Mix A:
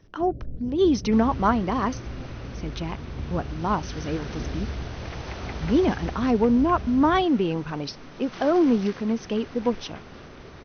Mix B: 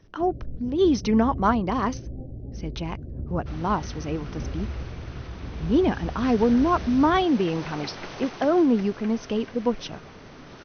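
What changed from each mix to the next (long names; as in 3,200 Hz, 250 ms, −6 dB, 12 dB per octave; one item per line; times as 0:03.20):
second sound: entry +2.35 s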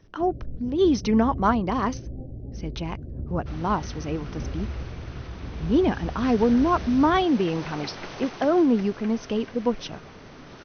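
nothing changed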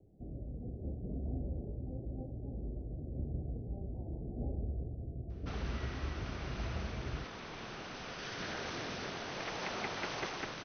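speech: muted
second sound: entry +2.00 s
master: add low-shelf EQ 460 Hz −6 dB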